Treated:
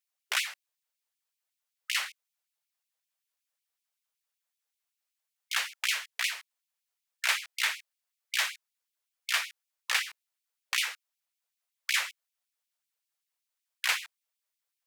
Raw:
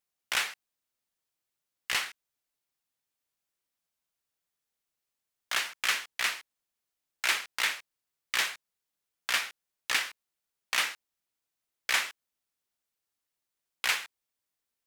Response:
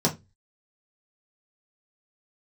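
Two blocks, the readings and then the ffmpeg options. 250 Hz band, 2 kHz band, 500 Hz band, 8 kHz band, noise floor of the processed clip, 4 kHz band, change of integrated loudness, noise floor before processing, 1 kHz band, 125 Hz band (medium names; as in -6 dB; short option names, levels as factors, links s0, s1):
under -35 dB, -0.5 dB, -6.0 dB, 0.0 dB, under -85 dBFS, 0.0 dB, -0.5 dB, under -85 dBFS, -2.5 dB, no reading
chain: -af "afftfilt=real='re*gte(b*sr/1024,400*pow(2200/400,0.5+0.5*sin(2*PI*5.3*pts/sr)))':imag='im*gte(b*sr/1024,400*pow(2200/400,0.5+0.5*sin(2*PI*5.3*pts/sr)))':win_size=1024:overlap=0.75"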